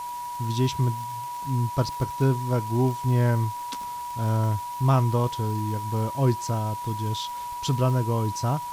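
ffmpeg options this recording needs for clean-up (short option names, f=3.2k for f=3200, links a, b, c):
-af "adeclick=t=4,bandreject=f=970:w=30,afwtdn=0.005"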